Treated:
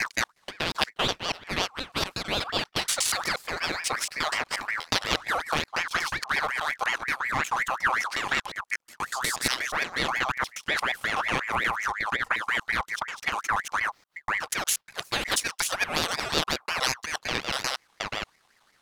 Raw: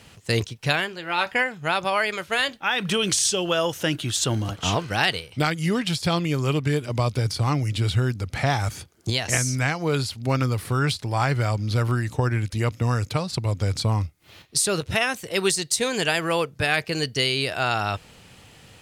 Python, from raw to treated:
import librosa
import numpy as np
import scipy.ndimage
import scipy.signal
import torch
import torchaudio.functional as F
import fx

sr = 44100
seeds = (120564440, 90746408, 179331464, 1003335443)

y = fx.block_reorder(x, sr, ms=120.0, group=4)
y = fx.peak_eq(y, sr, hz=590.0, db=-9.0, octaves=0.37)
y = fx.power_curve(y, sr, exponent=1.4)
y = fx.ring_lfo(y, sr, carrier_hz=1500.0, swing_pct=40, hz=5.5)
y = F.gain(torch.from_numpy(y), 4.0).numpy()